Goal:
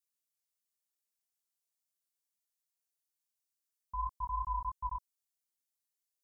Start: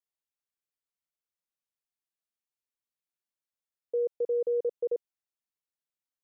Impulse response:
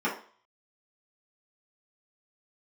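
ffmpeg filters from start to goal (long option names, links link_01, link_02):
-af "aeval=exprs='val(0)*sin(2*PI*530*n/s)':channel_layout=same,flanger=delay=19.5:depth=3.7:speed=2.9,bass=frequency=250:gain=-6,treble=frequency=4000:gain=13"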